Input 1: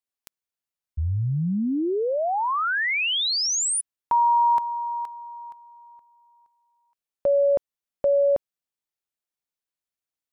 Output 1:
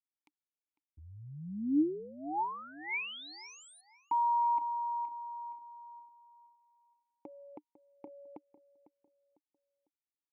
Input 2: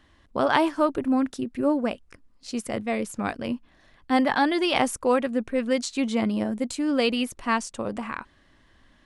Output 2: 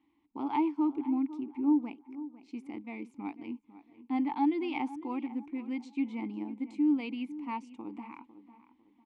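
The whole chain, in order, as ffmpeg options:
-filter_complex "[0:a]asplit=3[a][b][c];[a]bandpass=f=300:t=q:w=8,volume=0dB[d];[b]bandpass=f=870:t=q:w=8,volume=-6dB[e];[c]bandpass=f=2.24k:t=q:w=8,volume=-9dB[f];[d][e][f]amix=inputs=3:normalize=0,asplit=2[g][h];[h]adelay=501,lowpass=f=2.1k:p=1,volume=-15dB,asplit=2[i][j];[j]adelay=501,lowpass=f=2.1k:p=1,volume=0.36,asplit=2[k][l];[l]adelay=501,lowpass=f=2.1k:p=1,volume=0.36[m];[i][k][m]amix=inputs=3:normalize=0[n];[g][n]amix=inputs=2:normalize=0"

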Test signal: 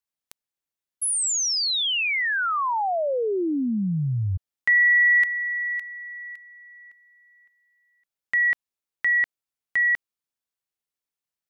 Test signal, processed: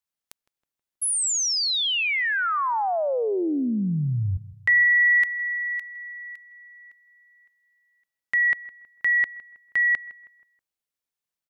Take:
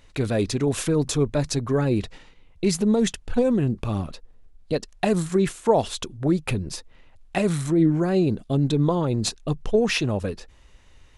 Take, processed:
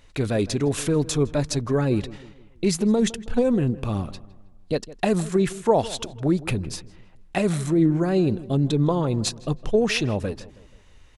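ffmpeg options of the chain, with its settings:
-filter_complex "[0:a]asplit=2[a][b];[b]adelay=160,lowpass=f=2.1k:p=1,volume=-17.5dB,asplit=2[c][d];[d]adelay=160,lowpass=f=2.1k:p=1,volume=0.46,asplit=2[e][f];[f]adelay=160,lowpass=f=2.1k:p=1,volume=0.46,asplit=2[g][h];[h]adelay=160,lowpass=f=2.1k:p=1,volume=0.46[i];[a][c][e][g][i]amix=inputs=5:normalize=0"

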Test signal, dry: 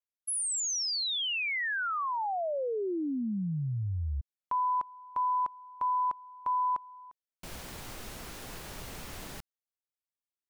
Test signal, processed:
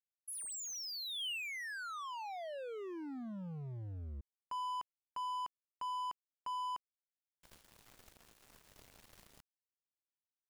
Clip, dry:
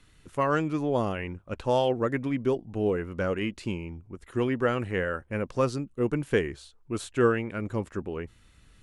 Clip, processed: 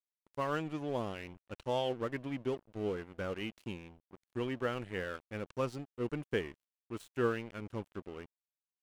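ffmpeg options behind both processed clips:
-af "aeval=exprs='sgn(val(0))*max(abs(val(0))-0.01,0)':c=same,adynamicequalizer=threshold=0.00158:dfrequency=3000:dqfactor=3.1:tfrequency=3000:tqfactor=3.1:attack=5:release=100:ratio=0.375:range=2.5:mode=boostabove:tftype=bell,volume=-8.5dB"

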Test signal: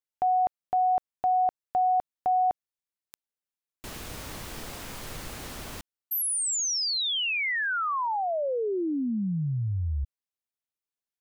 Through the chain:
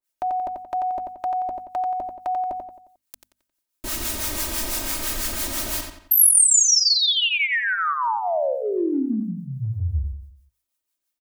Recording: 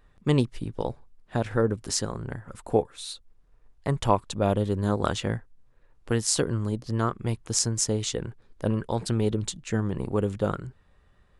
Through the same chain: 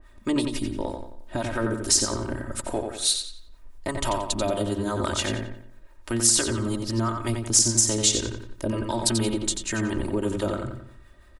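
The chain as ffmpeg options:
-filter_complex "[0:a]aecho=1:1:3.2:0.87,acrossover=split=730[a][b];[a]aeval=exprs='val(0)*(1-0.7/2+0.7/2*cos(2*PI*6*n/s))':c=same[c];[b]aeval=exprs='val(0)*(1-0.7/2-0.7/2*cos(2*PI*6*n/s))':c=same[d];[c][d]amix=inputs=2:normalize=0,acompressor=threshold=-29dB:ratio=4:attack=1.7:release=122:knee=1:detection=rms,highshelf=f=6.1k:g=9,bandreject=f=50:t=h:w=6,bandreject=f=100:t=h:w=6,bandreject=f=150:t=h:w=6,bandreject=f=200:t=h:w=6,bandreject=f=250:t=h:w=6,asplit=2[e][f];[f]adelay=89,lowpass=f=4.6k:p=1,volume=-4.5dB,asplit=2[g][h];[h]adelay=89,lowpass=f=4.6k:p=1,volume=0.43,asplit=2[i][j];[j]adelay=89,lowpass=f=4.6k:p=1,volume=0.43,asplit=2[k][l];[l]adelay=89,lowpass=f=4.6k:p=1,volume=0.43,asplit=2[m][n];[n]adelay=89,lowpass=f=4.6k:p=1,volume=0.43[o];[g][i][k][m][o]amix=inputs=5:normalize=0[p];[e][p]amix=inputs=2:normalize=0,adynamicequalizer=threshold=0.00794:dfrequency=3300:dqfactor=0.7:tfrequency=3300:tqfactor=0.7:attack=5:release=100:ratio=0.375:range=2:mode=boostabove:tftype=highshelf,volume=7.5dB"

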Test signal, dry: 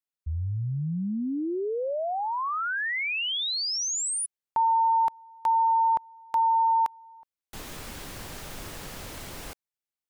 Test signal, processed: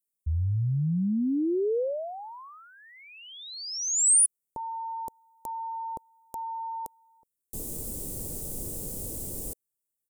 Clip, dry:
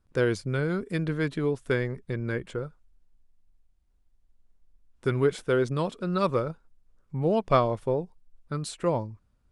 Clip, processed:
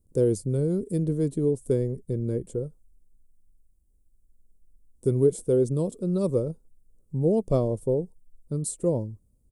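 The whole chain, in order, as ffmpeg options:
-af "firequalizer=gain_entry='entry(480,0);entry(730,-12);entry(1500,-28);entry(8300,7)':delay=0.05:min_phase=1,volume=3dB"

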